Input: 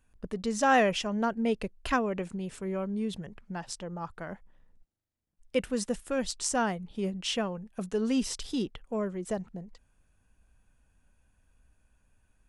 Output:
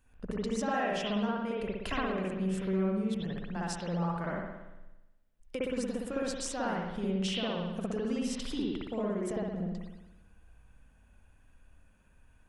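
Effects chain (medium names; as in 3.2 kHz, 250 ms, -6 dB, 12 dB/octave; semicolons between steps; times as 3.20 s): compression 6:1, threshold -36 dBFS, peak gain reduction 16 dB; spring tank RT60 1 s, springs 58 ms, chirp 55 ms, DRR -5.5 dB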